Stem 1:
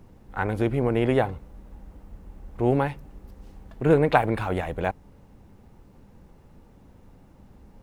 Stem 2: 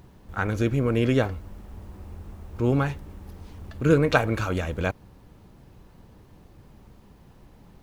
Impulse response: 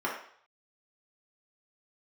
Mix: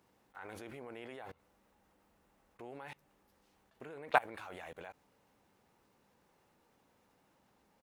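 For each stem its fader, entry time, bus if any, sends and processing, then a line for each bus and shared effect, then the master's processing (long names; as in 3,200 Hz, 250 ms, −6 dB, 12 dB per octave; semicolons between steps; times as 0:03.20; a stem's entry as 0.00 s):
−1.0 dB, 0.00 s, no send, no processing
−16.0 dB, 12 ms, no send, compressor whose output falls as the input rises −26 dBFS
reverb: not used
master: high-pass filter 1,100 Hz 6 dB per octave; output level in coarse steps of 24 dB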